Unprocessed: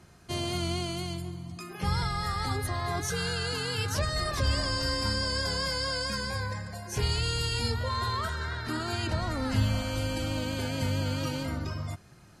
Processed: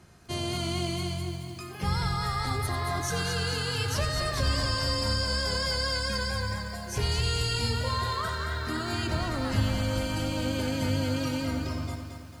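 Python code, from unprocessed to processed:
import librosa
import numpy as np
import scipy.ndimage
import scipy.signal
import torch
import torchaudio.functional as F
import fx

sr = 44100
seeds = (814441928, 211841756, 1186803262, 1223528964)

p1 = x + fx.echo_single(x, sr, ms=90, db=-12.5, dry=0)
y = fx.echo_crushed(p1, sr, ms=222, feedback_pct=55, bits=9, wet_db=-7)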